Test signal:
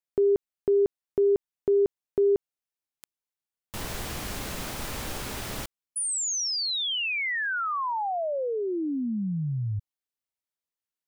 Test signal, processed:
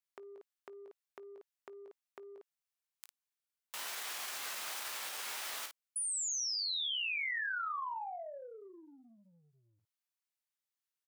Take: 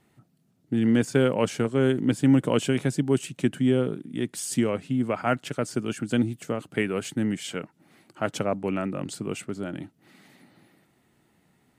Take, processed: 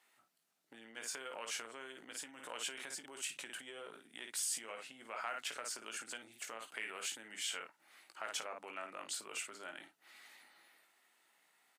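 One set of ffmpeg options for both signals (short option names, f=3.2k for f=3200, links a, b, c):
-af "aecho=1:1:18|53:0.422|0.355,acompressor=threshold=-34dB:ratio=10:attack=14:release=23:knee=6:detection=rms,highpass=1k,volume=-2dB"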